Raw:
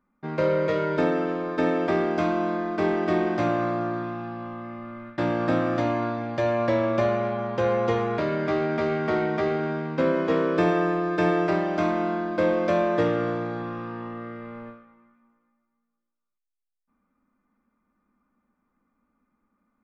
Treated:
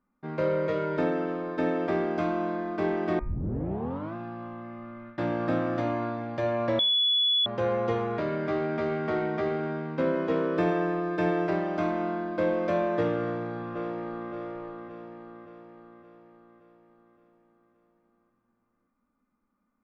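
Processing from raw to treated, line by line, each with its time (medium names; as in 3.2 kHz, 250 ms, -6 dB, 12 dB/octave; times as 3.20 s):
3.19 s: tape start 0.96 s
6.79–7.46 s: bleep 3.41 kHz -14 dBFS
13.18–14.31 s: echo throw 570 ms, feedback 55%, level -3.5 dB
whole clip: treble shelf 3.9 kHz -7.5 dB; de-hum 72.13 Hz, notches 36; trim -3.5 dB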